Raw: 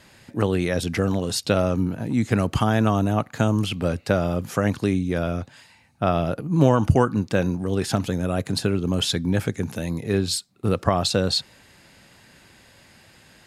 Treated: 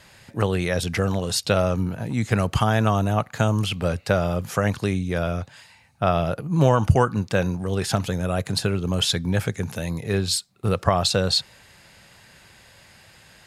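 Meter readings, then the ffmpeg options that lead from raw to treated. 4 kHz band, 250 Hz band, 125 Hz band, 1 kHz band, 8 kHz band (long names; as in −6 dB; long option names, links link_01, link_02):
+2.0 dB, −3.0 dB, +1.0 dB, +1.5 dB, +2.0 dB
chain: -af "equalizer=frequency=280:width_type=o:width=0.91:gain=-8.5,volume=2dB"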